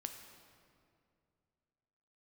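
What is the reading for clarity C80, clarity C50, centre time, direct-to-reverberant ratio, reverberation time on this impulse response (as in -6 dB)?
7.5 dB, 6.5 dB, 38 ms, 5.0 dB, 2.4 s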